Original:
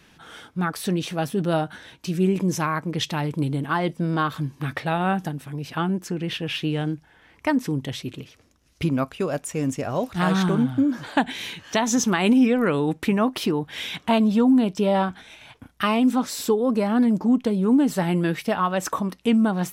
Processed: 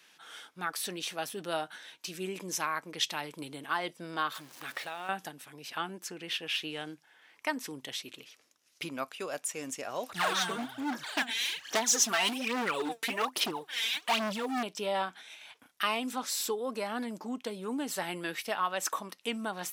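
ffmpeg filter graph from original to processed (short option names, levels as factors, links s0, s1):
-filter_complex "[0:a]asettb=1/sr,asplit=3[s0][s1][s2];[s0]atrim=end=4.354[s3];[s1]atrim=start=4.35:end=5.09,asetpts=PTS-STARTPTS,afade=t=in:d=0.004:c=qsin,afade=t=out:st=0.736:d=0.004:c=qsin,aeval=exprs='val(0)+0.5*0.0126*sgn(val(0))':c=same,equalizer=f=61:w=0.37:g=-9,acompressor=threshold=0.0562:ratio=6:attack=3.2:release=140:knee=1:detection=peak[s4];[s2]atrim=start=5.086[s5];[s3][s4]acrossfade=d=0.004:c1=hsin:c2=qsin[s6];[s6][s5]acrossfade=d=0.004:c1=qsin:c2=hsin,asettb=1/sr,asplit=3[s7][s8][s9];[s7]atrim=end=10.094[s10];[s8]atrim=start=10.09:end=14.63,asetpts=PTS-STARTPTS,afade=t=in:d=0.004:c=qsin,afade=t=out:st=4.536:d=0.004:c=qsin,aphaser=in_gain=1:out_gain=1:delay=4.5:decay=0.76:speed=1.2:type=sinusoidal,volume=5.62,asoftclip=hard,volume=0.178[s11];[s9]atrim=start=14.626[s12];[s10][s11]acrossfade=d=0.004:c1=hsin:c2=qsin[s13];[s13][s12]acrossfade=d=0.004:c1=qsin:c2=hsin,highpass=550,equalizer=f=700:w=0.39:g=-7,volume=0.891"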